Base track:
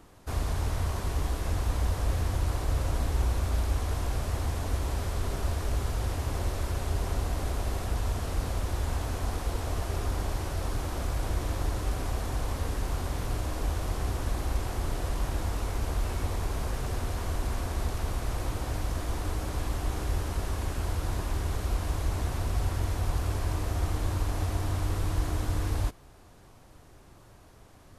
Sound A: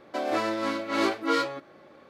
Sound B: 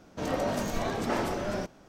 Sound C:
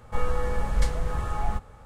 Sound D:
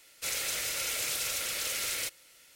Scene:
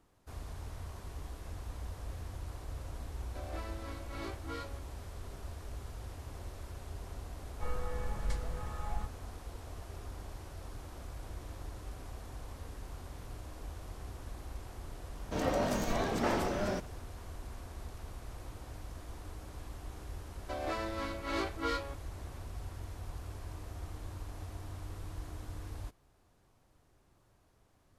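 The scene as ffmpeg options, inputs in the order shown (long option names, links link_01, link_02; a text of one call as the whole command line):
ffmpeg -i bed.wav -i cue0.wav -i cue1.wav -i cue2.wav -filter_complex "[1:a]asplit=2[link_01][link_02];[0:a]volume=-14.5dB[link_03];[link_02]lowshelf=frequency=160:gain=-9.5[link_04];[link_01]atrim=end=2.09,asetpts=PTS-STARTPTS,volume=-18dB,afade=type=in:duration=0.004:curve=hsin,afade=type=out:start_time=2.086:duration=0.004:curve=hsin,adelay=141561S[link_05];[3:a]atrim=end=1.85,asetpts=PTS-STARTPTS,volume=-11.5dB,afade=type=in:duration=0.004:curve=hsin,afade=type=out:start_time=1.846:duration=0.004:curve=hsin,adelay=7480[link_06];[2:a]atrim=end=1.88,asetpts=PTS-STARTPTS,volume=-2dB,afade=type=in:duration=0.004:curve=hsin,afade=type=out:start_time=1.876:duration=0.004:curve=hsin,adelay=15140[link_07];[link_04]atrim=end=2.09,asetpts=PTS-STARTPTS,volume=-9dB,afade=type=in:duration=0.004:curve=hsin,afade=type=out:start_time=2.086:duration=0.004:curve=hsin,adelay=20350[link_08];[link_03][link_05][link_06][link_07][link_08]amix=inputs=5:normalize=0" out.wav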